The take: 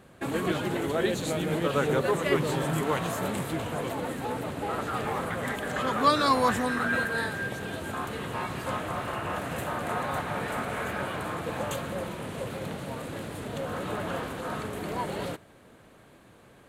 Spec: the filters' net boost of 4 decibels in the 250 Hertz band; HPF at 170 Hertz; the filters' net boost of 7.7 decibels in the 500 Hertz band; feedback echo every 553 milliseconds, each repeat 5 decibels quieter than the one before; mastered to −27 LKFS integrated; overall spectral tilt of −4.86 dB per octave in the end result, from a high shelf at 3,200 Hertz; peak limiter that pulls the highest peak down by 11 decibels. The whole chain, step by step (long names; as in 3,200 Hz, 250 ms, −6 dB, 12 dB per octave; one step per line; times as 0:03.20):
high-pass filter 170 Hz
parametric band 250 Hz +3.5 dB
parametric band 500 Hz +8.5 dB
high-shelf EQ 3,200 Hz −7.5 dB
brickwall limiter −17 dBFS
repeating echo 553 ms, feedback 56%, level −5 dB
level −0.5 dB